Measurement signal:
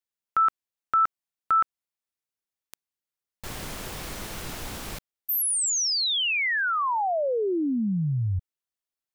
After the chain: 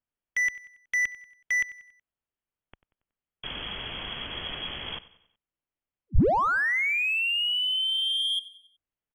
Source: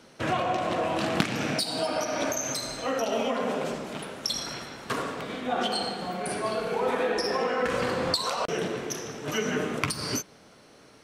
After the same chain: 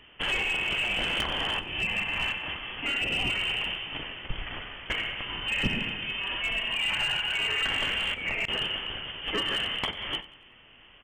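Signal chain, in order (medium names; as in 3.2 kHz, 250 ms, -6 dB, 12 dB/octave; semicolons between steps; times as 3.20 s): frequency inversion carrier 3.3 kHz; overload inside the chain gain 23 dB; tilt EQ -2 dB/octave; on a send: feedback delay 93 ms, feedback 46%, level -18 dB; on the sum: trim +2 dB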